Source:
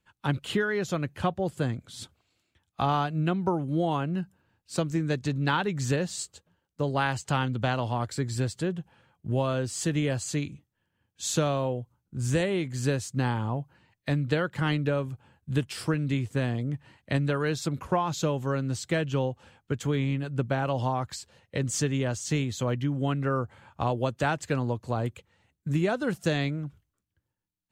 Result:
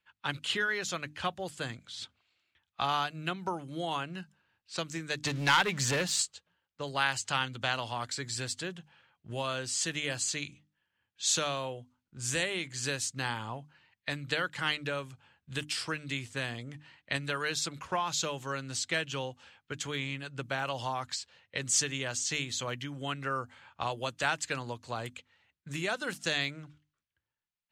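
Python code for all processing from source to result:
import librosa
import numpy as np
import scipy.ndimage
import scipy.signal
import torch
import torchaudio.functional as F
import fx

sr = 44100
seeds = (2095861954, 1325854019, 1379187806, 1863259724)

y = fx.chain(x, sr, fx.high_shelf(hz=4900.0, db=-10.5),
    fx.leveller(passes=2),
    fx.band_squash(depth_pct=40), at=(5.23, 6.22))
y = fx.env_lowpass(y, sr, base_hz=2900.0, full_db=-23.0)
y = fx.tilt_shelf(y, sr, db=-9.5, hz=970.0)
y = fx.hum_notches(y, sr, base_hz=50, count=6)
y = y * 10.0 ** (-3.5 / 20.0)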